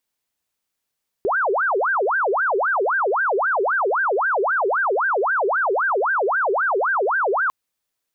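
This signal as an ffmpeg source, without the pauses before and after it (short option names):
-f lavfi -i "aevalsrc='0.141*sin(2*PI*(989*t-611/(2*PI*3.8)*sin(2*PI*3.8*t)))':d=6.25:s=44100"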